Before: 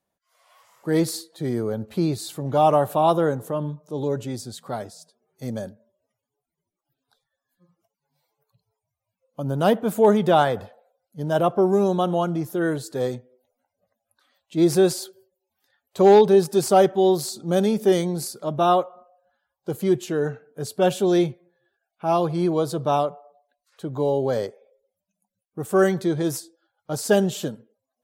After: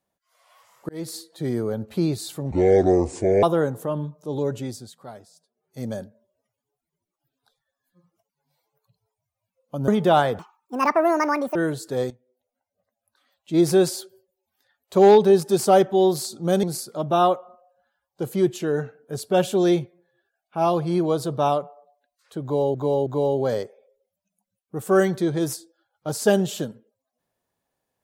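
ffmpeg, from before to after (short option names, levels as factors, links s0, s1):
-filter_complex "[0:a]asplit=13[s0][s1][s2][s3][s4][s5][s6][s7][s8][s9][s10][s11][s12];[s0]atrim=end=0.89,asetpts=PTS-STARTPTS,afade=t=out:st=0.886:d=0.004:c=hsin[s13];[s1]atrim=start=0.89:end=2.514,asetpts=PTS-STARTPTS,afade=t=in:d=0.42[s14];[s2]atrim=start=2.51:end=3.08,asetpts=PTS-STARTPTS,asetrate=27342,aresample=44100[s15];[s3]atrim=start=3.076:end=4.62,asetpts=PTS-STARTPTS,afade=t=out:st=1.204:d=0.34:silence=0.316228[s16];[s4]atrim=start=4.62:end=5.19,asetpts=PTS-STARTPTS,volume=0.316[s17];[s5]atrim=start=5.19:end=9.532,asetpts=PTS-STARTPTS,afade=t=in:d=0.34:silence=0.316228[s18];[s6]atrim=start=10.098:end=10.614[s19];[s7]atrim=start=10.61:end=12.59,asetpts=PTS-STARTPTS,asetrate=74970,aresample=44100[s20];[s8]atrim=start=12.586:end=13.14,asetpts=PTS-STARTPTS,afade=t=out:st=0.55:d=0.004:c=hsin:silence=0.188365[s21];[s9]atrim=start=13.14:end=17.672,asetpts=PTS-STARTPTS,afade=t=in:d=1.45:silence=0.188365[s22];[s10]atrim=start=18.108:end=24.222[s23];[s11]atrim=start=23.898:end=24.222[s24];[s12]atrim=start=23.898[s25];[s13][s14]concat=n=2:v=0:a=1[s26];[s26][s15]acrossfade=d=0.004:c1=hsin:c2=hsin[s27];[s16][s17][s18]concat=n=3:v=0:a=1[s28];[s27][s28]acrossfade=d=0.004:c1=hsin:c2=hsin[s29];[s29][s19]acrossfade=d=0.004:c1=hsin:c2=hsin[s30];[s30][s20]acrossfade=d=0.004:c1=hsin:c2=hsin[s31];[s21][s22]concat=n=2:v=0:a=1[s32];[s31][s32]acrossfade=d=0.004:c1=hsin:c2=hsin[s33];[s33][s23]acrossfade=d=0.004:c1=hsin:c2=hsin[s34];[s34][s24]acrossfade=d=0.004:c1=hsin:c2=hsin[s35];[s35][s25]acrossfade=d=0.004:c1=hsin:c2=hsin"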